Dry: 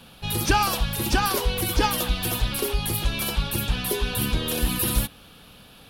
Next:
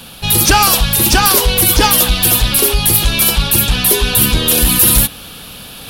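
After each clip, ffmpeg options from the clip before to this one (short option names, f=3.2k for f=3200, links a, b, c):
-af "highshelf=f=4.2k:g=9.5,areverse,acompressor=mode=upward:threshold=-37dB:ratio=2.5,areverse,aeval=exprs='0.668*sin(PI/2*2.24*val(0)/0.668)':c=same"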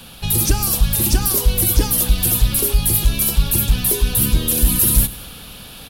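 -filter_complex "[0:a]aecho=1:1:99|198|297|396|495:0.112|0.0617|0.0339|0.0187|0.0103,acrossover=split=410|5900[a][b][c];[b]acompressor=threshold=-24dB:ratio=6[d];[a][d][c]amix=inputs=3:normalize=0,lowshelf=f=89:g=7,volume=-5.5dB"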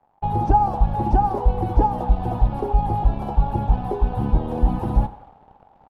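-af "crystalizer=i=0.5:c=0,aeval=exprs='sgn(val(0))*max(abs(val(0))-0.0266,0)':c=same,lowpass=f=820:t=q:w=9.6,volume=-1.5dB"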